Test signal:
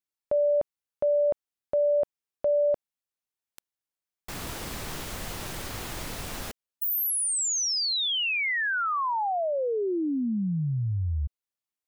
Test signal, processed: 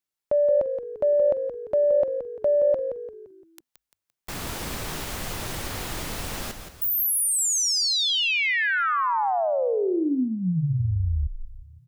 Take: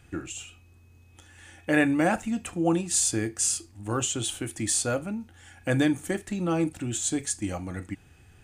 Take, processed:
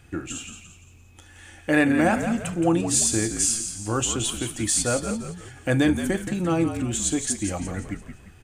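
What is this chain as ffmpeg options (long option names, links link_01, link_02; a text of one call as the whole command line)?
ffmpeg -i in.wav -filter_complex "[0:a]acontrast=56,asplit=6[link_01][link_02][link_03][link_04][link_05][link_06];[link_02]adelay=172,afreqshift=-51,volume=-8.5dB[link_07];[link_03]adelay=344,afreqshift=-102,volume=-16dB[link_08];[link_04]adelay=516,afreqshift=-153,volume=-23.6dB[link_09];[link_05]adelay=688,afreqshift=-204,volume=-31.1dB[link_10];[link_06]adelay=860,afreqshift=-255,volume=-38.6dB[link_11];[link_01][link_07][link_08][link_09][link_10][link_11]amix=inputs=6:normalize=0,volume=-3dB" out.wav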